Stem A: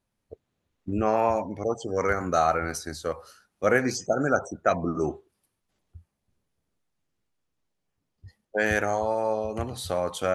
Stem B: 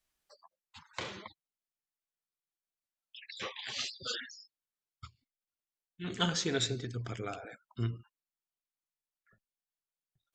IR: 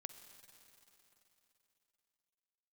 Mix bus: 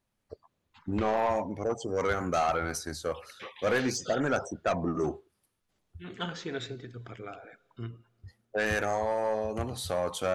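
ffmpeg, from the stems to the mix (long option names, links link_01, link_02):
-filter_complex "[0:a]asoftclip=type=tanh:threshold=-17.5dB,volume=-1dB[link_01];[1:a]bass=frequency=250:gain=-4,treble=frequency=4000:gain=-14,volume=-3dB,asplit=2[link_02][link_03];[link_03]volume=-12dB[link_04];[2:a]atrim=start_sample=2205[link_05];[link_04][link_05]afir=irnorm=-1:irlink=0[link_06];[link_01][link_02][link_06]amix=inputs=3:normalize=0,asoftclip=type=tanh:threshold=-17dB"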